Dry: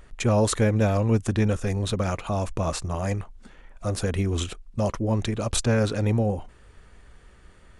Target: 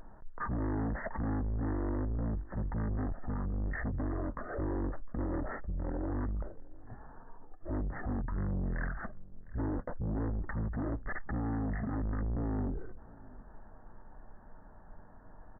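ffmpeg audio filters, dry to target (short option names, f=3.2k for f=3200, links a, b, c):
-af "alimiter=limit=-16dB:level=0:latency=1:release=36,aresample=8000,asoftclip=type=tanh:threshold=-31.5dB,aresample=44100,asetrate=22050,aresample=44100,aecho=1:1:706:0.0794"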